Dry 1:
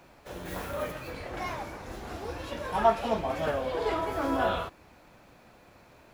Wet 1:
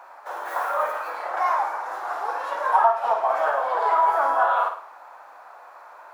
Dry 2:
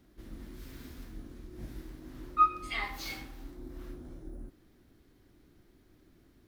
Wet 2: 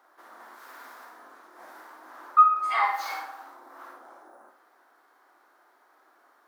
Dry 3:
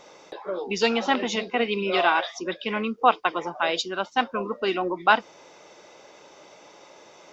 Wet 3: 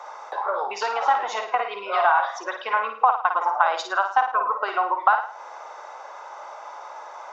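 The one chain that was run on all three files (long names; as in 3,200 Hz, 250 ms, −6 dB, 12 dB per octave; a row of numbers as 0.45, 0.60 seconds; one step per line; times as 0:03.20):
high shelf with overshoot 1,900 Hz −10.5 dB, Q 1.5
downward compressor 12 to 1, threshold −27 dBFS
four-pole ladder high-pass 680 Hz, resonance 35%
flutter between parallel walls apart 9.3 metres, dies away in 0.46 s
loudness normalisation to −23 LKFS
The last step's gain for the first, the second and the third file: +17.5, +18.5, +17.0 decibels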